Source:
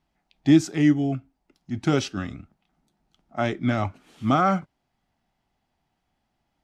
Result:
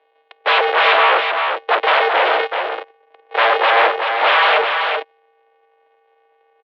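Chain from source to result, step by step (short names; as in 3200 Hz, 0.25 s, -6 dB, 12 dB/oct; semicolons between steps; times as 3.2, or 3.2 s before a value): sample sorter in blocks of 128 samples; bell 1200 Hz -11.5 dB 0.43 oct; in parallel at -2.5 dB: compressor, threshold -26 dBFS, peak gain reduction 13.5 dB; on the sum: sample leveller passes 2; sine folder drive 20 dB, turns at -4.5 dBFS; on a send: echo 0.383 s -5.5 dB; on the sum: mistuned SSB +110 Hz 390–3400 Hz; mismatched tape noise reduction decoder only; gain -4 dB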